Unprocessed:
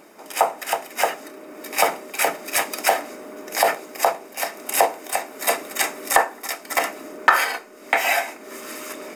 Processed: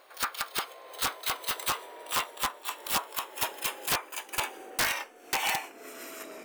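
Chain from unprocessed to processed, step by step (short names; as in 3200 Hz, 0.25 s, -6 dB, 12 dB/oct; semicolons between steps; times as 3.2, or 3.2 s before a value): speed glide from 181% -> 103%; wrapped overs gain 11 dB; gain -8.5 dB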